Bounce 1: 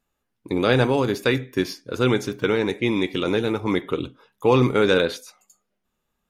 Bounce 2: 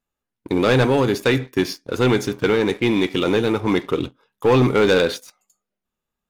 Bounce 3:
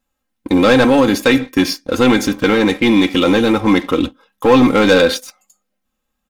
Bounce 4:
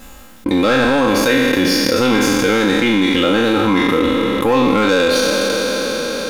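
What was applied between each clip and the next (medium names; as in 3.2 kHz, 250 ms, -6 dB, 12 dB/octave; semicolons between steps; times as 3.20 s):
waveshaping leveller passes 2; trim -3 dB
peaking EQ 430 Hz -4 dB 0.25 oct; comb 3.8 ms, depth 66%; in parallel at +0.5 dB: peak limiter -14.5 dBFS, peak gain reduction 9.5 dB; on the sum: trim +1 dB
spectral sustain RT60 2.59 s; reverb removal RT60 0.65 s; level flattener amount 70%; trim -7 dB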